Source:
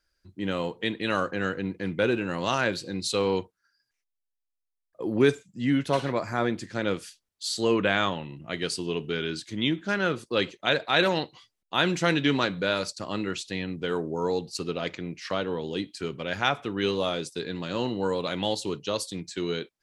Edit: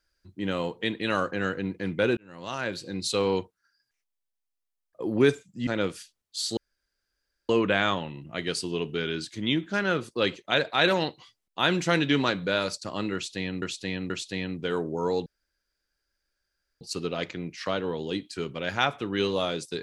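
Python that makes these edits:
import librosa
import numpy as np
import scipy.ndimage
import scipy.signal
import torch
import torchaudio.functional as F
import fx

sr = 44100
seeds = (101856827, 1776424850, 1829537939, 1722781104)

y = fx.edit(x, sr, fx.fade_in_span(start_s=2.17, length_s=0.88),
    fx.cut(start_s=5.67, length_s=1.07),
    fx.insert_room_tone(at_s=7.64, length_s=0.92),
    fx.repeat(start_s=13.29, length_s=0.48, count=3),
    fx.insert_room_tone(at_s=14.45, length_s=1.55), tone=tone)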